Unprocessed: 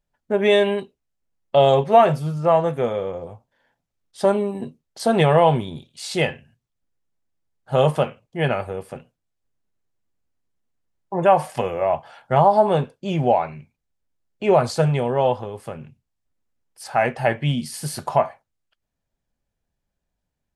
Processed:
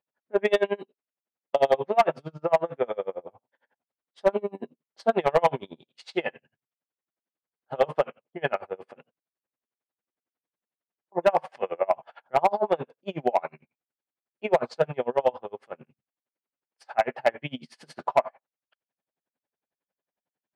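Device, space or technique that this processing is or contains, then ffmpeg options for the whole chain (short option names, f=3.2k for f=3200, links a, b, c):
helicopter radio: -af "highpass=320,lowpass=2.7k,aeval=exprs='val(0)*pow(10,-32*(0.5-0.5*cos(2*PI*11*n/s))/20)':c=same,asoftclip=type=hard:threshold=-13.5dB,volume=2dB"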